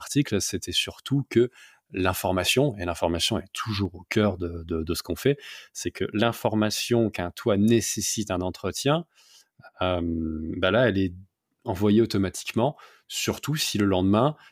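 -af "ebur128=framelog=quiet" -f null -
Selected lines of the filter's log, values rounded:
Integrated loudness:
  I:         -25.4 LUFS
  Threshold: -35.7 LUFS
Loudness range:
  LRA:         2.2 LU
  Threshold: -45.9 LUFS
  LRA low:   -27.1 LUFS
  LRA high:  -25.0 LUFS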